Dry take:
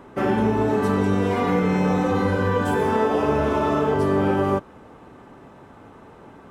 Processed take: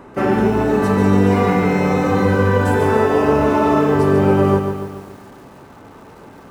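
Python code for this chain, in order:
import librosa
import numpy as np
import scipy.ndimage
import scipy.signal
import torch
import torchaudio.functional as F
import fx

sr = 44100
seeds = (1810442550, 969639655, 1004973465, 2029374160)

y = fx.notch(x, sr, hz=3300.0, q=8.5)
y = fx.echo_crushed(y, sr, ms=143, feedback_pct=55, bits=8, wet_db=-7)
y = F.gain(torch.from_numpy(y), 4.5).numpy()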